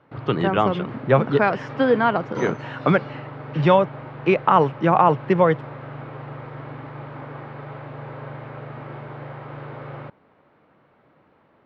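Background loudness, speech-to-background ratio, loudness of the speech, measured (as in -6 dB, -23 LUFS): -36.5 LUFS, 16.0 dB, -20.5 LUFS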